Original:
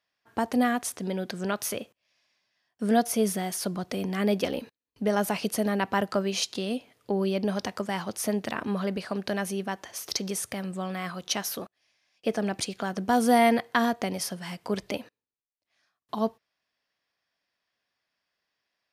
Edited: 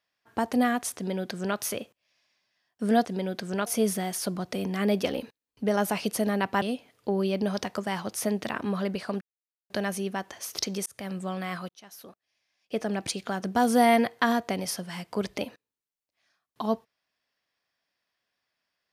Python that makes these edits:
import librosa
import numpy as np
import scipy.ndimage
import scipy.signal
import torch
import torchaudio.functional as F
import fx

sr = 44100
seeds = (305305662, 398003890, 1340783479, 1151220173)

y = fx.edit(x, sr, fx.duplicate(start_s=0.96, length_s=0.61, to_s=3.05),
    fx.cut(start_s=6.01, length_s=0.63),
    fx.insert_silence(at_s=9.23, length_s=0.49),
    fx.fade_in_span(start_s=10.39, length_s=0.25),
    fx.fade_in_span(start_s=11.22, length_s=1.43), tone=tone)